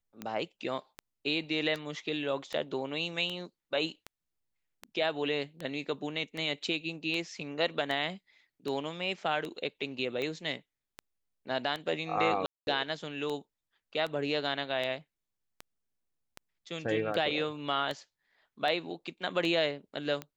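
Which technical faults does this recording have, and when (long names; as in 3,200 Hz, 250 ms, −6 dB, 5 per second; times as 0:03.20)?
scratch tick 78 rpm −23 dBFS
0:12.46–0:12.67: drop-out 211 ms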